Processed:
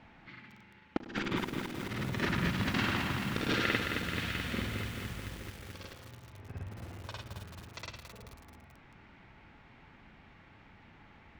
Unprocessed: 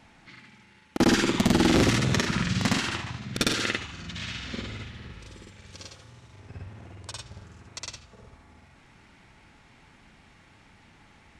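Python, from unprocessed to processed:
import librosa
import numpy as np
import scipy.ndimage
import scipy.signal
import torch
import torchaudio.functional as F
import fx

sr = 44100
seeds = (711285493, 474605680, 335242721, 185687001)

y = scipy.signal.sosfilt(scipy.signal.butter(2, 2900.0, 'lowpass', fs=sr, output='sos'), x)
y = fx.over_compress(y, sr, threshold_db=-28.0, ratio=-0.5)
y = fx.echo_crushed(y, sr, ms=217, feedback_pct=80, bits=7, wet_db=-5)
y = y * 10.0 ** (-5.0 / 20.0)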